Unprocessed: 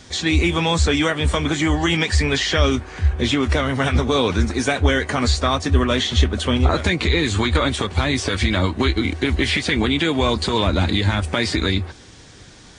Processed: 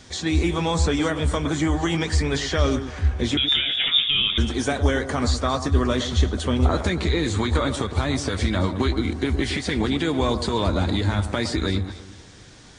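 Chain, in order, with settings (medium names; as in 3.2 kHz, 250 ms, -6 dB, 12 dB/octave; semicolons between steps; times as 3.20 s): dynamic bell 2.6 kHz, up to -7 dB, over -37 dBFS, Q 1.2; 3.37–4.38 s: frequency inversion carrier 3.6 kHz; on a send: echo whose repeats swap between lows and highs 113 ms, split 1.3 kHz, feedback 53%, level -9.5 dB; on the sum: trim -3 dB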